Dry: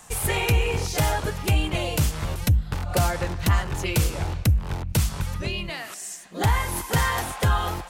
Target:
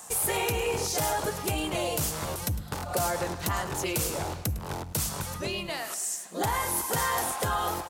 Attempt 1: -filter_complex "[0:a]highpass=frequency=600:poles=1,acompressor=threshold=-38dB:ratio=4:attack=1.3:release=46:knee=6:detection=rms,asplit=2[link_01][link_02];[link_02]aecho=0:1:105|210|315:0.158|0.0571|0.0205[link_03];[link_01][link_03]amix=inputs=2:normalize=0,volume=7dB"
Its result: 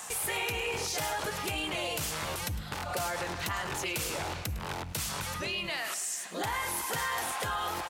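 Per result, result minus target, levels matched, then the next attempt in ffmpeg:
downward compressor: peak gain reduction +8 dB; 2,000 Hz band +4.5 dB
-filter_complex "[0:a]highpass=frequency=600:poles=1,acompressor=threshold=-29.5dB:ratio=4:attack=1.3:release=46:knee=6:detection=rms,asplit=2[link_01][link_02];[link_02]aecho=0:1:105|210|315:0.158|0.0571|0.0205[link_03];[link_01][link_03]amix=inputs=2:normalize=0,volume=7dB"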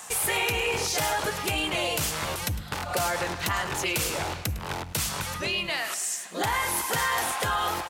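2,000 Hz band +4.5 dB
-filter_complex "[0:a]highpass=frequency=600:poles=1,equalizer=frequency=2400:width_type=o:width=2.2:gain=-10,acompressor=threshold=-29.5dB:ratio=4:attack=1.3:release=46:knee=6:detection=rms,asplit=2[link_01][link_02];[link_02]aecho=0:1:105|210|315:0.158|0.0571|0.0205[link_03];[link_01][link_03]amix=inputs=2:normalize=0,volume=7dB"

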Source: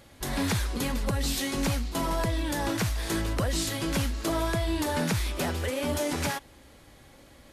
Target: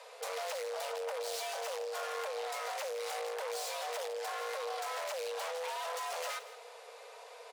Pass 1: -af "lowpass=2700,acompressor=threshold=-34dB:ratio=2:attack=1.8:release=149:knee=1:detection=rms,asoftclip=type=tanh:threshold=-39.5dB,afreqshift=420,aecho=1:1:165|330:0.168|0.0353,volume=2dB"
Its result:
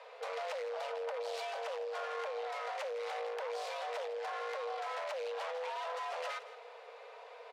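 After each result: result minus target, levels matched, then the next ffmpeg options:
8,000 Hz band −12.0 dB; downward compressor: peak gain reduction +7 dB
-af "lowpass=8800,acompressor=threshold=-34dB:ratio=2:attack=1.8:release=149:knee=1:detection=rms,asoftclip=type=tanh:threshold=-39.5dB,afreqshift=420,aecho=1:1:165|330:0.168|0.0353,volume=2dB"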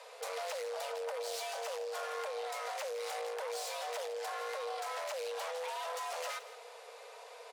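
downward compressor: peak gain reduction +7 dB
-af "lowpass=8800,asoftclip=type=tanh:threshold=-39.5dB,afreqshift=420,aecho=1:1:165|330:0.168|0.0353,volume=2dB"

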